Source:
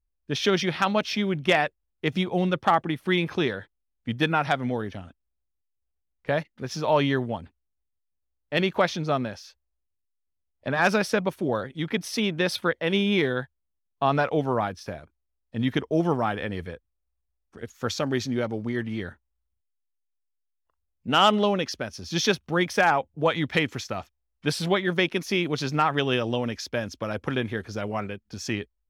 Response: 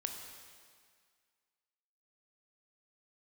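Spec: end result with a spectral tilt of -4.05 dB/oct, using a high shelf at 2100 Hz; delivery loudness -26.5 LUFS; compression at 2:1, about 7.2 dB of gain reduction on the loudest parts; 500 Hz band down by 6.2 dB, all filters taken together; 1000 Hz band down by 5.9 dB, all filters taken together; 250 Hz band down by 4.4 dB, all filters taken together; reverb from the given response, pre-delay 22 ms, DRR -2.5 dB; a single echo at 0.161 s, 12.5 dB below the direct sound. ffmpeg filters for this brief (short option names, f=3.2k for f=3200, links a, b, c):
-filter_complex "[0:a]equalizer=f=250:t=o:g=-4.5,equalizer=f=500:t=o:g=-5,equalizer=f=1k:t=o:g=-5,highshelf=f=2.1k:g=-4.5,acompressor=threshold=-34dB:ratio=2,aecho=1:1:161:0.237,asplit=2[a][b];[1:a]atrim=start_sample=2205,adelay=22[c];[b][c]afir=irnorm=-1:irlink=0,volume=2.5dB[d];[a][d]amix=inputs=2:normalize=0,volume=5dB"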